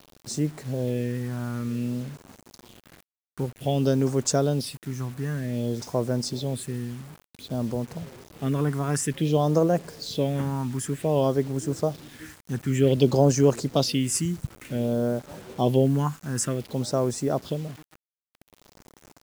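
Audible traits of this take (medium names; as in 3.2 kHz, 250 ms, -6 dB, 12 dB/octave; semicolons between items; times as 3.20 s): phasing stages 4, 0.54 Hz, lowest notch 530–3400 Hz; a quantiser's noise floor 8-bit, dither none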